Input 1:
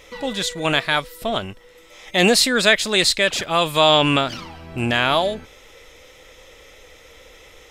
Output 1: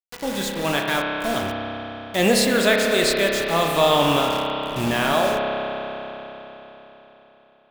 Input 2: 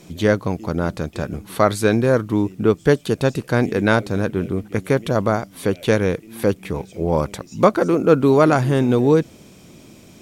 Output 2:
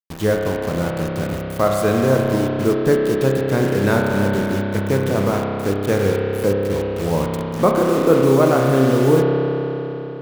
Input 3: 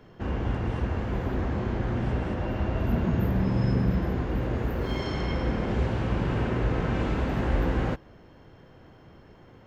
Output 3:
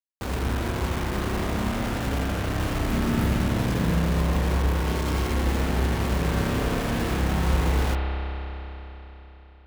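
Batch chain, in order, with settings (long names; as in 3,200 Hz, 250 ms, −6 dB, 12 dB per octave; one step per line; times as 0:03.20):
parametric band 3,200 Hz −5.5 dB 2.3 octaves
bit reduction 5 bits
spring reverb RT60 3.9 s, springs 30 ms, chirp 40 ms, DRR −0.5 dB
level −2 dB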